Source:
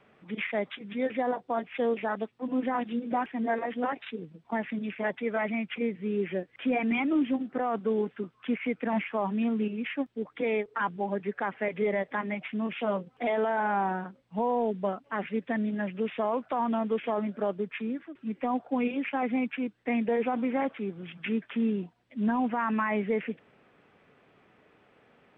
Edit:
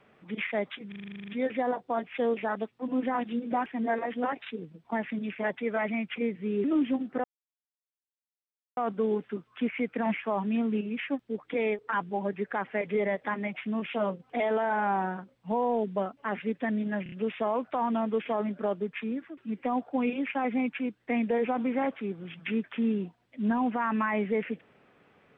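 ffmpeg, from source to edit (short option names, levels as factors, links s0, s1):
-filter_complex "[0:a]asplit=16[s0][s1][s2][s3][s4][s5][s6][s7][s8][s9][s10][s11][s12][s13][s14][s15];[s0]atrim=end=0.922[s16];[s1]atrim=start=0.878:end=0.922[s17];[s2]atrim=start=0.878:end=0.922[s18];[s3]atrim=start=0.878:end=0.922[s19];[s4]atrim=start=0.878:end=0.922[s20];[s5]atrim=start=0.878:end=0.922[s21];[s6]atrim=start=0.878:end=0.922[s22];[s7]atrim=start=0.878:end=0.922[s23];[s8]atrim=start=0.878:end=0.922[s24];[s9]atrim=start=0.878:end=0.922[s25];[s10]atrim=start=0.878:end=6.242[s26];[s11]atrim=start=7.038:end=7.64,asetpts=PTS-STARTPTS,afade=t=out:st=0.598:d=0.004:c=hsin,apad=pad_dur=1.53[s27];[s12]atrim=start=7.64:end=15.932,asetpts=PTS-STARTPTS,afade=t=in:d=0.004:c=hsin[s28];[s13]atrim=start=15.898:end=15.932[s29];[s14]atrim=start=15.898:end=15.932[s30];[s15]atrim=start=15.898[s31];[s16][s17]acrossfade=d=0.004:c1=hsin:c2=hsin[s32];[s32][s18]acrossfade=d=0.004:c1=hsin:c2=hsin[s33];[s33][s19]acrossfade=d=0.004:c1=hsin:c2=hsin[s34];[s34][s20]acrossfade=d=0.004:c1=hsin:c2=hsin[s35];[s35][s21]acrossfade=d=0.004:c1=hsin:c2=hsin[s36];[s36][s22]acrossfade=d=0.004:c1=hsin:c2=hsin[s37];[s37][s23]acrossfade=d=0.004:c1=hsin:c2=hsin[s38];[s38][s24]acrossfade=d=0.004:c1=hsin:c2=hsin[s39];[s39][s25]acrossfade=d=0.004:c1=hsin:c2=hsin[s40];[s40][s26]acrossfade=d=0.004:c1=hsin:c2=hsin[s41];[s27][s28]concat=n=2:v=0:a=1[s42];[s41][s42]acrossfade=d=0.004:c1=hsin:c2=hsin[s43];[s43][s29]acrossfade=d=0.004:c1=hsin:c2=hsin[s44];[s44][s30]acrossfade=d=0.004:c1=hsin:c2=hsin[s45];[s45][s31]acrossfade=d=0.004:c1=hsin:c2=hsin"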